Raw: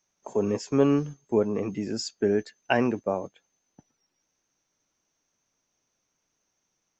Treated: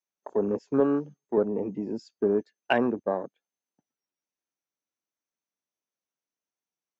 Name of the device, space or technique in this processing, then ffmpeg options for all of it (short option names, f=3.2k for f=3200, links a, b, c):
over-cleaned archive recording: -filter_complex "[0:a]highpass=180,lowpass=5.2k,afwtdn=0.0178,asettb=1/sr,asplit=3[a][b][c];[a]atrim=end=0.804[d];[b]atrim=start=0.8:end=1.38,asetpts=PTS-STARTPTS,afade=t=in:d=0.004:c=qsin,afade=t=out:st=0.576:d=0.004:c=qsin,highpass=f=240:p=1[e];[c]atrim=start=1.376[f];[d][e]acrossfade=d=0.004:c1=hsin:c2=qsin[g];[g][f]acrossfade=d=0.004:c1=qsin:c2=hsin"